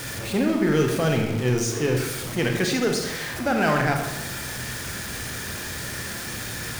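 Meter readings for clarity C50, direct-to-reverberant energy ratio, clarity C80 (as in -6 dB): 4.5 dB, 2.0 dB, 7.0 dB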